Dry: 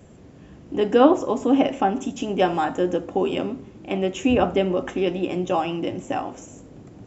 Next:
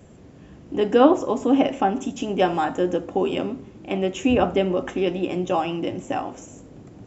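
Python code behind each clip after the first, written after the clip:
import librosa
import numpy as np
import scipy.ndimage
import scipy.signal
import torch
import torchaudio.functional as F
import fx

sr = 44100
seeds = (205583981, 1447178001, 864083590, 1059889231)

y = x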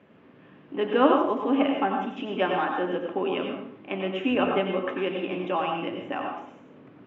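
y = fx.cabinet(x, sr, low_hz=300.0, low_slope=12, high_hz=2900.0, hz=(340.0, 490.0, 730.0), db=(-6, -6, -8))
y = fx.rev_plate(y, sr, seeds[0], rt60_s=0.52, hf_ratio=0.85, predelay_ms=80, drr_db=2.5)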